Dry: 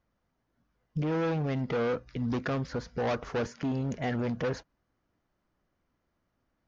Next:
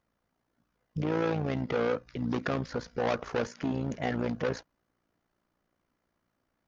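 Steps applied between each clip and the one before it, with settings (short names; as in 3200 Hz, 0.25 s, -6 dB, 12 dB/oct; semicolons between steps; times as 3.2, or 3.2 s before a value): low shelf 110 Hz -8 dB; AM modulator 58 Hz, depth 50%; gain +4 dB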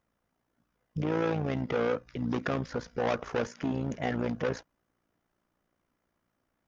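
bell 4300 Hz -5 dB 0.23 oct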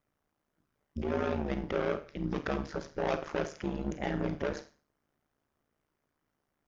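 Schroeder reverb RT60 0.38 s, combs from 29 ms, DRR 9 dB; ring modulator 74 Hz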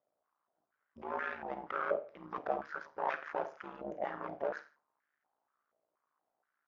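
stepped band-pass 4.2 Hz 630–1700 Hz; gain +7 dB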